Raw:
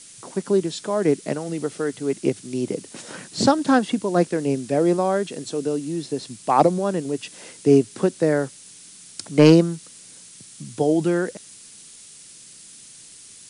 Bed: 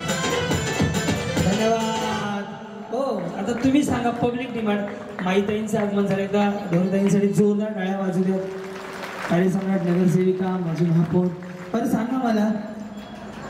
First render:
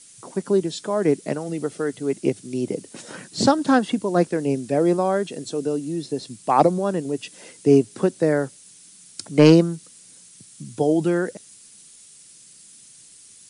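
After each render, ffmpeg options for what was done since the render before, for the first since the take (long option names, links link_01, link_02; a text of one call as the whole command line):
ffmpeg -i in.wav -af "afftdn=noise_reduction=6:noise_floor=-45" out.wav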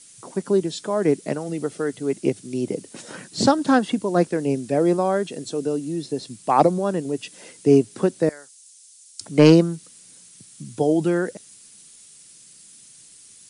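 ffmpeg -i in.wav -filter_complex "[0:a]asettb=1/sr,asplit=3[link_01][link_02][link_03];[link_01]atrim=end=8.294[link_04];[link_02]atrim=start=8.29:end=9.21,asetpts=PTS-STARTPTS,afade=type=in:duration=0.004:curve=qsin,afade=type=out:start_time=0.916:duration=0.004:curve=qsin,bandpass=frequency=7000:width_type=q:width=0.99[link_05];[link_03]atrim=start=9.206[link_06];[link_04][link_05]acrossfade=duration=0.004:curve1=hsin:curve2=qsin[link_07];[link_07][link_06]acrossfade=duration=0.004:curve1=qsin:curve2=hsin" out.wav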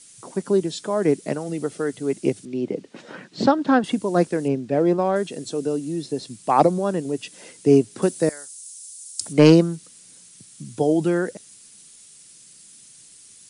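ffmpeg -i in.wav -filter_complex "[0:a]asettb=1/sr,asplit=3[link_01][link_02][link_03];[link_01]atrim=end=2.454[link_04];[link_02]atrim=start=2.45:end=3.84,asetpts=PTS-STARTPTS,afade=type=in:duration=0.004:curve=qsin,afade=type=out:start_time=1.386:duration=0.004:curve=qsin,highpass=150,lowpass=3200[link_05];[link_03]atrim=start=3.836[link_06];[link_04][link_05]acrossfade=duration=0.004:curve1=hsin:curve2=qsin[link_07];[link_07][link_06]acrossfade=duration=0.004:curve1=qsin:curve2=hsin,asettb=1/sr,asplit=3[link_08][link_09][link_10];[link_08]atrim=end=4.484[link_11];[link_09]atrim=start=4.48:end=5.16,asetpts=PTS-STARTPTS,afade=type=in:duration=0.004:curve=qsin,afade=type=out:start_time=0.676:duration=0.004:curve=qsin,adynamicsmooth=sensitivity=2:basefreq=3300[link_12];[link_10]atrim=start=5.156[link_13];[link_11][link_12]acrossfade=duration=0.004:curve1=hsin:curve2=qsin[link_14];[link_14][link_13]acrossfade=duration=0.004:curve1=qsin:curve2=hsin,asettb=1/sr,asplit=3[link_15][link_16][link_17];[link_15]atrim=end=8.024[link_18];[link_16]atrim=start=8.02:end=9.33,asetpts=PTS-STARTPTS,afade=type=in:duration=0.004:curve=qsin,afade=type=out:start_time=1.306:duration=0.004:curve=qsin,aemphasis=mode=production:type=50fm[link_19];[link_17]atrim=start=9.326[link_20];[link_18][link_19]acrossfade=duration=0.004:curve1=hsin:curve2=qsin[link_21];[link_21][link_20]acrossfade=duration=0.004:curve1=qsin:curve2=hsin" out.wav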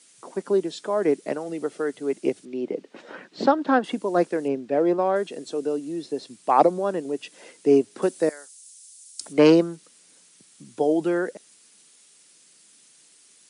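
ffmpeg -i in.wav -af "highpass=310,highshelf=frequency=4600:gain=-10" out.wav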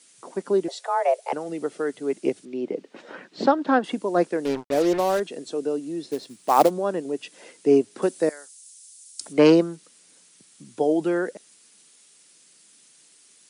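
ffmpeg -i in.wav -filter_complex "[0:a]asettb=1/sr,asplit=3[link_01][link_02][link_03];[link_01]atrim=end=0.684[link_04];[link_02]atrim=start=0.68:end=1.33,asetpts=PTS-STARTPTS,afade=type=in:duration=0.004:curve=qsin,afade=type=out:start_time=0.646:duration=0.004:curve=qsin,afreqshift=240[link_05];[link_03]atrim=start=1.326[link_06];[link_04][link_05]acrossfade=duration=0.004:curve1=hsin:curve2=qsin[link_07];[link_07][link_06]acrossfade=duration=0.004:curve1=qsin:curve2=hsin,asettb=1/sr,asplit=3[link_08][link_09][link_10];[link_08]atrim=end=4.454[link_11];[link_09]atrim=start=4.45:end=5.2,asetpts=PTS-STARTPTS,afade=type=in:duration=0.004:curve=qsin,afade=type=out:start_time=0.746:duration=0.004:curve=qsin,acrusher=bits=4:mix=0:aa=0.5[link_12];[link_10]atrim=start=5.196[link_13];[link_11][link_12]acrossfade=duration=0.004:curve1=hsin:curve2=qsin[link_14];[link_14][link_13]acrossfade=duration=0.004:curve1=qsin:curve2=hsin,asplit=3[link_15][link_16][link_17];[link_15]afade=type=out:start_time=6.1:duration=0.02[link_18];[link_16]acrusher=bits=4:mode=log:mix=0:aa=0.000001,afade=type=in:start_time=6.1:duration=0.02,afade=type=out:start_time=6.69:duration=0.02[link_19];[link_17]afade=type=in:start_time=6.69:duration=0.02[link_20];[link_18][link_19][link_20]amix=inputs=3:normalize=0" out.wav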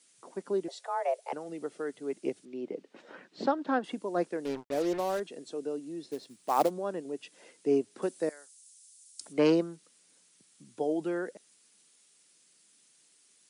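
ffmpeg -i in.wav -af "volume=-9dB" out.wav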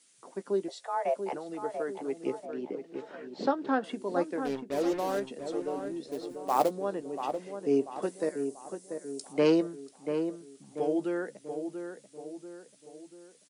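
ffmpeg -i in.wav -filter_complex "[0:a]asplit=2[link_01][link_02];[link_02]adelay=15,volume=-12dB[link_03];[link_01][link_03]amix=inputs=2:normalize=0,asplit=2[link_04][link_05];[link_05]adelay=688,lowpass=frequency=1600:poles=1,volume=-7dB,asplit=2[link_06][link_07];[link_07]adelay=688,lowpass=frequency=1600:poles=1,volume=0.49,asplit=2[link_08][link_09];[link_09]adelay=688,lowpass=frequency=1600:poles=1,volume=0.49,asplit=2[link_10][link_11];[link_11]adelay=688,lowpass=frequency=1600:poles=1,volume=0.49,asplit=2[link_12][link_13];[link_13]adelay=688,lowpass=frequency=1600:poles=1,volume=0.49,asplit=2[link_14][link_15];[link_15]adelay=688,lowpass=frequency=1600:poles=1,volume=0.49[link_16];[link_04][link_06][link_08][link_10][link_12][link_14][link_16]amix=inputs=7:normalize=0" out.wav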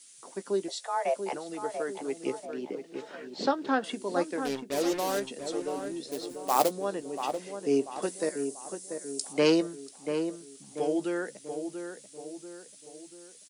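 ffmpeg -i in.wav -af "highshelf=frequency=2500:gain=11.5" out.wav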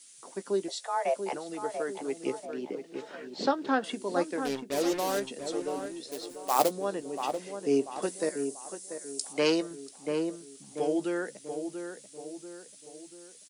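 ffmpeg -i in.wav -filter_complex "[0:a]asettb=1/sr,asplit=3[link_01][link_02][link_03];[link_01]atrim=end=5.864[link_04];[link_02]atrim=start=5.86:end=6.59,asetpts=PTS-STARTPTS,afade=type=in:duration=0.004:curve=qsin,afade=type=out:start_time=0.726:duration=0.004:curve=qsin,equalizer=frequency=150:width_type=o:width=2.8:gain=-7[link_05];[link_03]atrim=start=6.586[link_06];[link_04][link_05]acrossfade=duration=0.004:curve1=hsin:curve2=qsin[link_07];[link_07][link_06]acrossfade=duration=0.004:curve1=qsin:curve2=hsin,asettb=1/sr,asplit=3[link_08][link_09][link_10];[link_08]atrim=end=8.574[link_11];[link_09]atrim=start=8.57:end=9.71,asetpts=PTS-STARTPTS,afade=type=in:duration=0.004:curve=qsin,afade=type=out:start_time=1.136:duration=0.004:curve=qsin,lowshelf=frequency=400:gain=-6.5[link_12];[link_10]atrim=start=9.706[link_13];[link_11][link_12]acrossfade=duration=0.004:curve1=hsin:curve2=qsin[link_14];[link_14][link_13]acrossfade=duration=0.004:curve1=qsin:curve2=hsin" out.wav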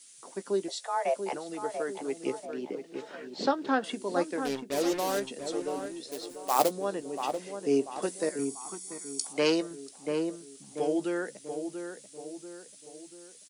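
ffmpeg -i in.wav -filter_complex "[0:a]asettb=1/sr,asplit=3[link_01][link_02][link_03];[link_01]atrim=end=8.394[link_04];[link_02]atrim=start=8.39:end=9.27,asetpts=PTS-STARTPTS,afade=type=in:duration=0.004:curve=qsin,afade=type=out:start_time=0.876:duration=0.004:curve=qsin,aecho=1:1:0.9:0.88,atrim=end_sample=38808[link_05];[link_03]atrim=start=9.266[link_06];[link_04][link_05]acrossfade=duration=0.004:curve1=hsin:curve2=qsin[link_07];[link_07][link_06]acrossfade=duration=0.004:curve1=qsin:curve2=hsin" out.wav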